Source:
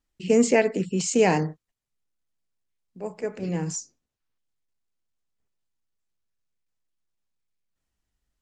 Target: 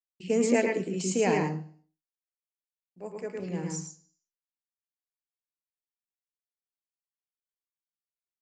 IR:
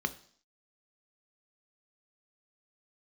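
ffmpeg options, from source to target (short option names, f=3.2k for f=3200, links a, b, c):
-filter_complex "[0:a]agate=range=-33dB:threshold=-42dB:ratio=3:detection=peak,lowshelf=f=130:g=-4,asplit=2[a][b];[1:a]atrim=start_sample=2205,adelay=110[c];[b][c]afir=irnorm=-1:irlink=0,volume=-7.5dB[d];[a][d]amix=inputs=2:normalize=0,volume=-6.5dB"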